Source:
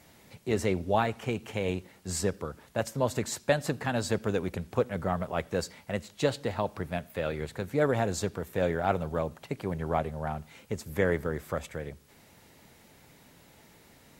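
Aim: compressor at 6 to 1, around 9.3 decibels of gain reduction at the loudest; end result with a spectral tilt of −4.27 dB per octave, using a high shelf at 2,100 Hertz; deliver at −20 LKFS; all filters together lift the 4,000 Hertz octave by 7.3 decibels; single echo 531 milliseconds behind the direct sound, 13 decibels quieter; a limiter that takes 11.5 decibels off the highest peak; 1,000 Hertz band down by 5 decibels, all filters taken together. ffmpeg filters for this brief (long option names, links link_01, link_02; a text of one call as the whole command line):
ffmpeg -i in.wav -af "equalizer=frequency=1000:width_type=o:gain=-8.5,highshelf=frequency=2100:gain=4,equalizer=frequency=4000:width_type=o:gain=5.5,acompressor=threshold=-31dB:ratio=6,alimiter=level_in=3.5dB:limit=-24dB:level=0:latency=1,volume=-3.5dB,aecho=1:1:531:0.224,volume=19.5dB" out.wav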